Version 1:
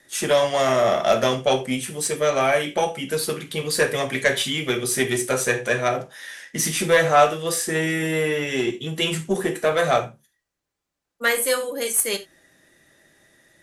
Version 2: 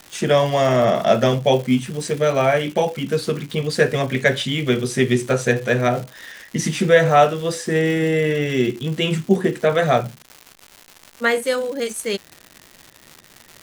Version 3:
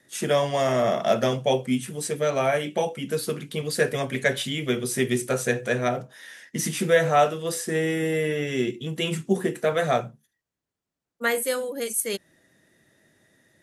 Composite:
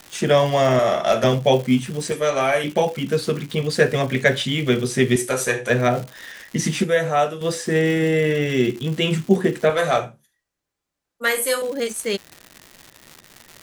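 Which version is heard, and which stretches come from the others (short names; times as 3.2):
2
0.79–1.24 from 1
2.12–2.64 from 1
5.16–5.7 from 1
6.84–7.41 from 3
9.7–11.62 from 1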